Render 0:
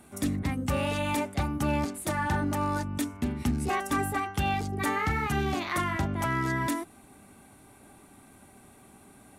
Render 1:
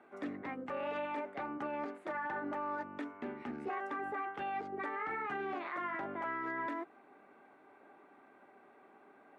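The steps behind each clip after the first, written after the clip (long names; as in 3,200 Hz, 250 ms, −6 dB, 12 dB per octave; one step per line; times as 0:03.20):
Chebyshev band-pass filter 400–1,800 Hz, order 2
brickwall limiter −28.5 dBFS, peak gain reduction 10 dB
level −2 dB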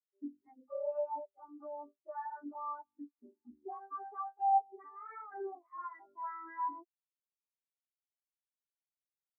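low shelf with overshoot 100 Hz +14 dB, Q 1.5
every bin expanded away from the loudest bin 4 to 1
level +9 dB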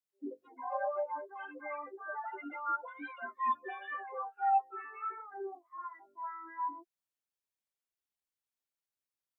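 delay with pitch and tempo change per echo 92 ms, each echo +5 semitones, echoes 2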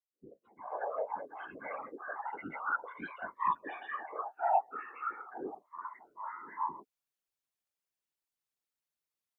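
fade in at the beginning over 1.10 s
random phases in short frames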